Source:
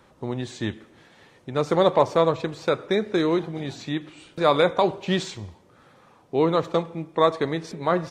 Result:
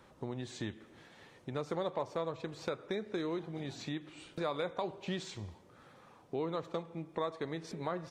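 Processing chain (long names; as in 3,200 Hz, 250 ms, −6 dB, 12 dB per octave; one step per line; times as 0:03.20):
downward compressor 2.5 to 1, threshold −34 dBFS, peak gain reduction 14.5 dB
level −4.5 dB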